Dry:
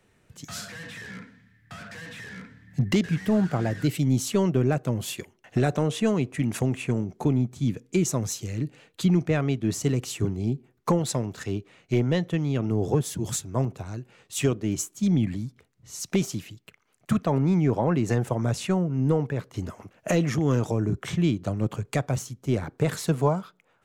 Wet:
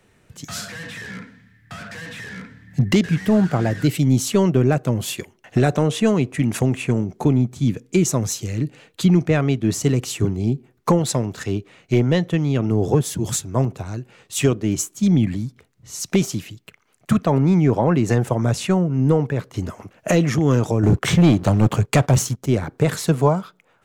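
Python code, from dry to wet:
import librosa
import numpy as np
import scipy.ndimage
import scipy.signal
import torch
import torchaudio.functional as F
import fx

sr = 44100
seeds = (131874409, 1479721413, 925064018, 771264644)

y = fx.leveller(x, sr, passes=2, at=(20.83, 22.46))
y = F.gain(torch.from_numpy(y), 6.0).numpy()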